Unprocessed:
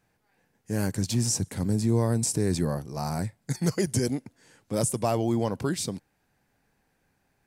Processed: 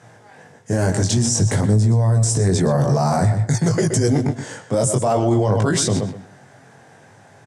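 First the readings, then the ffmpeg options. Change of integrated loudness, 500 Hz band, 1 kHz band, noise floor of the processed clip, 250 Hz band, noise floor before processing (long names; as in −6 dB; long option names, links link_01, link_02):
+9.5 dB, +9.5 dB, +11.0 dB, −48 dBFS, +7.5 dB, −73 dBFS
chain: -filter_complex "[0:a]areverse,acompressor=threshold=-33dB:ratio=12,areverse,highpass=frequency=110:width=0.5412,highpass=frequency=110:width=1.3066,equalizer=frequency=110:width_type=q:width=4:gain=8,equalizer=frequency=200:width_type=q:width=4:gain=-5,equalizer=frequency=300:width_type=q:width=4:gain=-5,equalizer=frequency=650:width_type=q:width=4:gain=5,equalizer=frequency=2500:width_type=q:width=4:gain=-8,equalizer=frequency=4400:width_type=q:width=4:gain=-7,lowpass=frequency=8600:width=0.5412,lowpass=frequency=8600:width=1.3066,asplit=2[link_01][link_02];[link_02]adelay=123,lowpass=frequency=4300:poles=1,volume=-10dB,asplit=2[link_03][link_04];[link_04]adelay=123,lowpass=frequency=4300:poles=1,volume=0.23,asplit=2[link_05][link_06];[link_06]adelay=123,lowpass=frequency=4300:poles=1,volume=0.23[link_07];[link_01][link_03][link_05][link_07]amix=inputs=4:normalize=0,flanger=delay=18.5:depth=4:speed=0.52,deesser=0.65,alimiter=level_in=36dB:limit=-1dB:release=50:level=0:latency=1,volume=-8.5dB"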